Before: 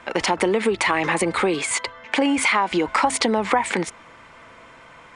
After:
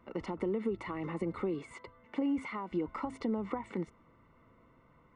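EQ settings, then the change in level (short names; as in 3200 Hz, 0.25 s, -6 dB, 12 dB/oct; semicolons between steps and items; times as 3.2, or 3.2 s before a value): polynomial smoothing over 65 samples; bell 760 Hz -15 dB 1.4 oct; -7.5 dB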